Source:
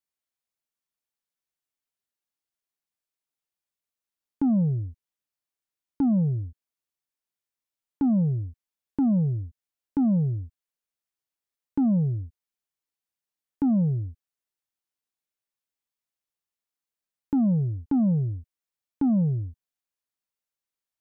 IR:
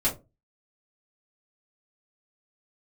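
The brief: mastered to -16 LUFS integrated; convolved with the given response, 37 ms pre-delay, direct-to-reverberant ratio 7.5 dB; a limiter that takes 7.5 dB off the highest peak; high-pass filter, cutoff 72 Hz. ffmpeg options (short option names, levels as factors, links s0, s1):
-filter_complex "[0:a]highpass=72,alimiter=level_in=1.06:limit=0.0631:level=0:latency=1,volume=0.944,asplit=2[s0][s1];[1:a]atrim=start_sample=2205,adelay=37[s2];[s1][s2]afir=irnorm=-1:irlink=0,volume=0.141[s3];[s0][s3]amix=inputs=2:normalize=0,volume=5.01"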